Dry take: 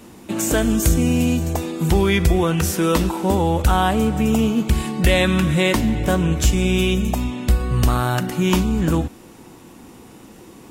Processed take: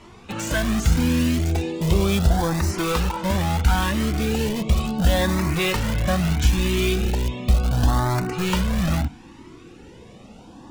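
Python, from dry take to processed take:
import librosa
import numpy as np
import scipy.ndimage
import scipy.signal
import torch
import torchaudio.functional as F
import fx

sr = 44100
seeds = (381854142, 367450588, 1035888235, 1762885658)

p1 = scipy.signal.sosfilt(scipy.signal.butter(2, 4800.0, 'lowpass', fs=sr, output='sos'), x)
p2 = fx.hum_notches(p1, sr, base_hz=50, count=3)
p3 = (np.mod(10.0 ** (17.0 / 20.0) * p2 + 1.0, 2.0) - 1.0) / 10.0 ** (17.0 / 20.0)
p4 = p2 + (p3 * librosa.db_to_amplitude(-7.0))
p5 = fx.filter_lfo_notch(p4, sr, shape='saw_up', hz=0.36, low_hz=260.0, high_hz=3600.0, q=1.7)
p6 = fx.comb_cascade(p5, sr, direction='rising', hz=0.74)
y = p6 * librosa.db_to_amplitude(2.0)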